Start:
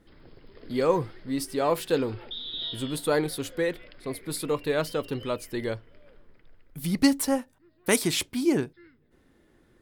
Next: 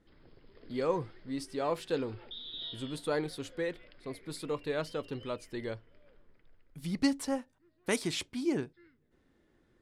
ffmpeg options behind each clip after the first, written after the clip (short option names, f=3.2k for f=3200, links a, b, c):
-af "lowpass=7.8k,volume=-7.5dB"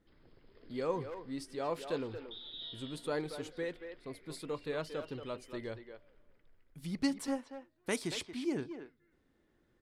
-filter_complex "[0:a]asplit=2[a][b];[b]adelay=230,highpass=300,lowpass=3.4k,asoftclip=type=hard:threshold=-26.5dB,volume=-8dB[c];[a][c]amix=inputs=2:normalize=0,volume=-4dB"